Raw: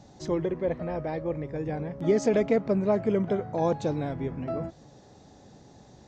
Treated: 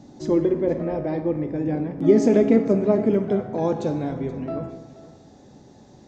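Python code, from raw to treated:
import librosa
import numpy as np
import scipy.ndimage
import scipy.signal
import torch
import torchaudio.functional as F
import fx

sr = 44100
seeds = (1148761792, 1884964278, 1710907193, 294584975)

y = fx.peak_eq(x, sr, hz=280.0, db=fx.steps((0.0, 12.5), (3.14, 6.0)), octaves=0.95)
y = y + 10.0 ** (-17.5 / 20.0) * np.pad(y, (int(477 * sr / 1000.0), 0))[:len(y)]
y = fx.rev_plate(y, sr, seeds[0], rt60_s=0.98, hf_ratio=0.8, predelay_ms=0, drr_db=6.5)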